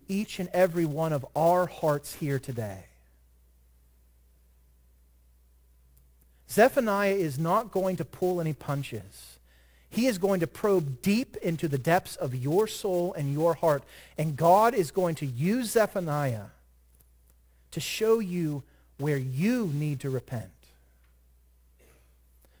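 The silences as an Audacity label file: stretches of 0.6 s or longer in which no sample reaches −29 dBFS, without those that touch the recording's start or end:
2.710000	6.520000	silence
8.970000	9.970000	silence
16.400000	17.770000	silence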